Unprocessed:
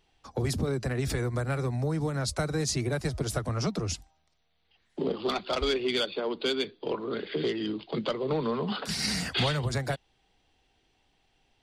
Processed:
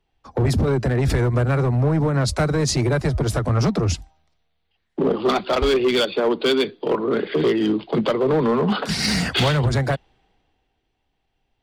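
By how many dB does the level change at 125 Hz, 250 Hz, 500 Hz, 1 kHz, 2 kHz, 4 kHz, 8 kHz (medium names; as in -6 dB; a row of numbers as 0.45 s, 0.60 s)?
+11.0 dB, +10.5 dB, +10.5 dB, +10.0 dB, +8.5 dB, +6.0 dB, +5.0 dB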